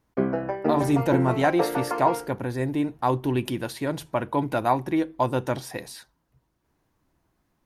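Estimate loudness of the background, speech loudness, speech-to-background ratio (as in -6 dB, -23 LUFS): -28.0 LUFS, -26.0 LUFS, 2.0 dB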